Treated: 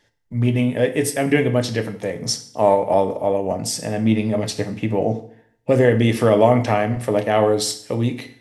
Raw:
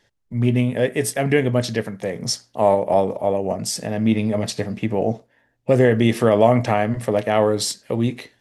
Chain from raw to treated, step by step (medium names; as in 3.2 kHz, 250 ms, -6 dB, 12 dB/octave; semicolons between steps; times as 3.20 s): FDN reverb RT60 0.59 s, low-frequency decay 1.05×, high-frequency decay 0.95×, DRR 7.5 dB